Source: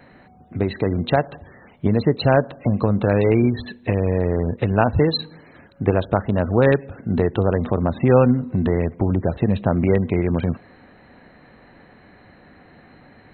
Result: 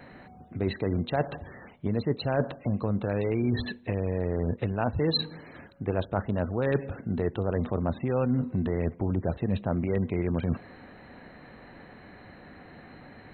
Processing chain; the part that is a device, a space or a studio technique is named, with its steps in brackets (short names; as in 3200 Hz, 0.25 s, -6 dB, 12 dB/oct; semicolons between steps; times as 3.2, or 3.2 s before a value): compression on the reversed sound (reverse; compressor 10:1, threshold -23 dBFS, peak gain reduction 14 dB; reverse)